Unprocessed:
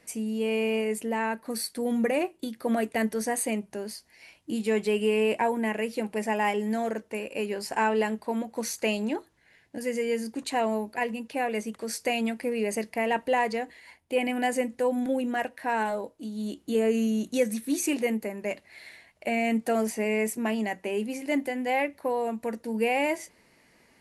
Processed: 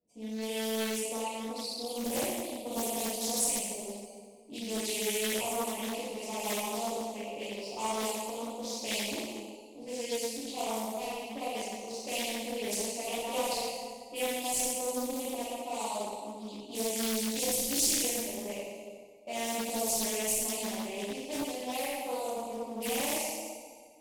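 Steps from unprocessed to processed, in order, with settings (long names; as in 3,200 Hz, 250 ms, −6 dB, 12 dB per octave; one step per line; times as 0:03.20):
low-pass that shuts in the quiet parts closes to 400 Hz, open at −22 dBFS
first-order pre-emphasis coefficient 0.97
in parallel at −1.5 dB: downward compressor, threshold −54 dBFS, peak gain reduction 21 dB
on the sum: leveller curve on the samples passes 1
asymmetric clip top −32.5 dBFS, bottom −27.5 dBFS
Butterworth band-reject 1,600 Hz, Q 0.63
flutter between parallel walls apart 10.1 metres, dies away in 0.36 s
dense smooth reverb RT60 2 s, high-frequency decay 0.7×, DRR −10 dB
highs frequency-modulated by the lows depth 0.57 ms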